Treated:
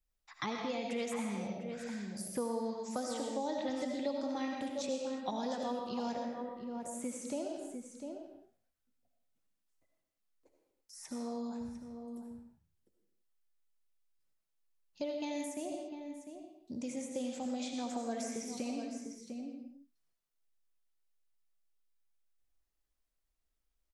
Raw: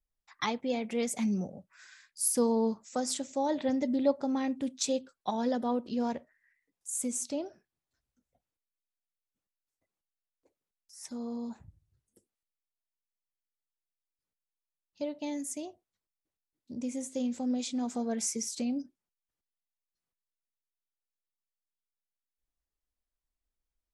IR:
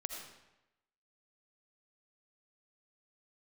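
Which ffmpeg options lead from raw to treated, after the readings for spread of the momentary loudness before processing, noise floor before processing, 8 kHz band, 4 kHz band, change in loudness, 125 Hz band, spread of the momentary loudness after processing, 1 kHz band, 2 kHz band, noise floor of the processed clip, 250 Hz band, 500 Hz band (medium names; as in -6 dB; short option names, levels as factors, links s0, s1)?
13 LU, under -85 dBFS, -10.5 dB, -4.5 dB, -7.0 dB, -5.5 dB, 10 LU, -3.0 dB, -2.0 dB, -83 dBFS, -6.0 dB, -4.0 dB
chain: -filter_complex "[0:a]asplit=2[s0][s1];[s1]adelay=699.7,volume=0.282,highshelf=f=4000:g=-15.7[s2];[s0][s2]amix=inputs=2:normalize=0[s3];[1:a]atrim=start_sample=2205,afade=t=out:st=0.4:d=0.01,atrim=end_sample=18081[s4];[s3][s4]afir=irnorm=-1:irlink=0,acrossover=split=580|2800[s5][s6][s7];[s5]acompressor=threshold=0.00708:ratio=4[s8];[s6]acompressor=threshold=0.00631:ratio=4[s9];[s7]acompressor=threshold=0.00224:ratio=4[s10];[s8][s9][s10]amix=inputs=3:normalize=0,volume=1.5"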